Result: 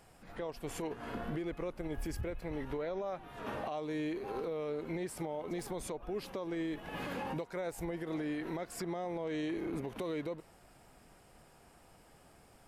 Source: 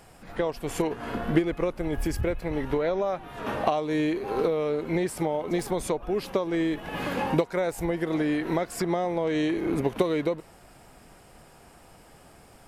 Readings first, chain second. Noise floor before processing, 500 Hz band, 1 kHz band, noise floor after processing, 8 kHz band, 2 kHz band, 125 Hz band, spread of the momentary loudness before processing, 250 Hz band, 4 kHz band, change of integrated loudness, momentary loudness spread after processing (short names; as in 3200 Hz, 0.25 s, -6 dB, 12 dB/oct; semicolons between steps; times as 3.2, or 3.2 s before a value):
-53 dBFS, -12.0 dB, -11.5 dB, -61 dBFS, -9.0 dB, -11.0 dB, -11.0 dB, 5 LU, -11.5 dB, -10.5 dB, -11.5 dB, 4 LU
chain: limiter -21.5 dBFS, peak gain reduction 11.5 dB; gain -8.5 dB